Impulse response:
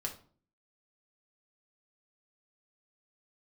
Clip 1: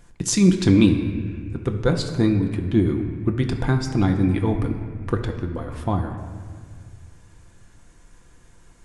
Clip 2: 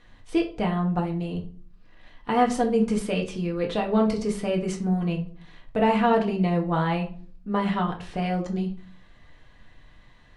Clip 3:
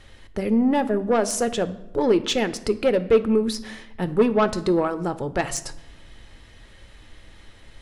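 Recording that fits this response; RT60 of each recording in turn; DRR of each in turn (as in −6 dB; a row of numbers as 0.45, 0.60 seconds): 2; 1.9 s, 0.45 s, non-exponential decay; 3.5, 0.0, 11.5 decibels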